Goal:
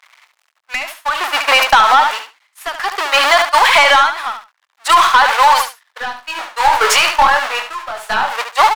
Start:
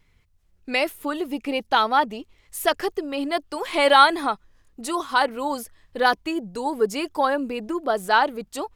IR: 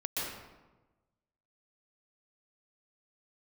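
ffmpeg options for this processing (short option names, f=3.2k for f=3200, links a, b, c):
-filter_complex "[0:a]aeval=exprs='val(0)+0.5*0.0668*sgn(val(0))':c=same,agate=range=-38dB:threshold=-24dB:ratio=16:detection=peak,highpass=f=910:w=0.5412,highpass=f=910:w=1.3066,aemphasis=mode=reproduction:type=75kf,acompressor=threshold=-28dB:ratio=10,aeval=exprs='0.126*(cos(1*acos(clip(val(0)/0.126,-1,1)))-cos(1*PI/2))+0.0447*(cos(2*acos(clip(val(0)/0.126,-1,1)))-cos(2*PI/2))+0.000708*(cos(8*acos(clip(val(0)/0.126,-1,1)))-cos(8*PI/2))':c=same,asplit=3[a][b][c];[a]afade=t=out:st=5.99:d=0.02[d];[b]flanger=delay=19:depth=4.3:speed=2.7,afade=t=in:st=5.99:d=0.02,afade=t=out:st=8.3:d=0.02[e];[c]afade=t=in:st=8.3:d=0.02[f];[d][e][f]amix=inputs=3:normalize=0,aeval=exprs='(tanh(17.8*val(0)+0.1)-tanh(0.1))/17.8':c=same,tremolo=f=0.57:d=0.88,aecho=1:1:72|144:0.355|0.0568,alimiter=level_in=30.5dB:limit=-1dB:release=50:level=0:latency=1,volume=-1dB"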